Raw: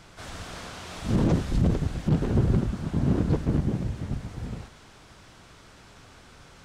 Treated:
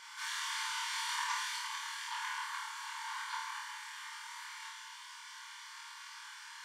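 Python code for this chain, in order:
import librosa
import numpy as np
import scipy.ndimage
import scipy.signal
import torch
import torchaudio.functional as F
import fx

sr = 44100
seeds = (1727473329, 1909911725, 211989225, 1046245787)

y = fx.brickwall_highpass(x, sr, low_hz=860.0)
y = fx.notch_comb(y, sr, f0_hz=1300.0)
y = fx.room_flutter(y, sr, wall_m=4.4, rt60_s=0.65)
y = y * librosa.db_to_amplitude(2.5)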